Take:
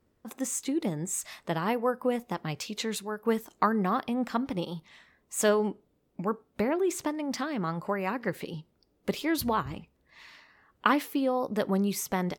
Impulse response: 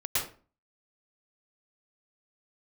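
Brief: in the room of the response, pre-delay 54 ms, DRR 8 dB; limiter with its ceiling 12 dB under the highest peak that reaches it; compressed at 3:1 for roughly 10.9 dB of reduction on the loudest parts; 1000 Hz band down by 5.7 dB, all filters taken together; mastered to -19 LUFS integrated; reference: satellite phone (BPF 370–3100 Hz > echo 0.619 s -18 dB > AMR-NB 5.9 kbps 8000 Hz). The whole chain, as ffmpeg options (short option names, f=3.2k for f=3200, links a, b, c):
-filter_complex "[0:a]equalizer=f=1k:t=o:g=-7,acompressor=threshold=-37dB:ratio=3,alimiter=level_in=6dB:limit=-24dB:level=0:latency=1,volume=-6dB,asplit=2[a][b];[1:a]atrim=start_sample=2205,adelay=54[c];[b][c]afir=irnorm=-1:irlink=0,volume=-16dB[d];[a][d]amix=inputs=2:normalize=0,highpass=370,lowpass=3.1k,aecho=1:1:619:0.126,volume=27dB" -ar 8000 -c:a libopencore_amrnb -b:a 5900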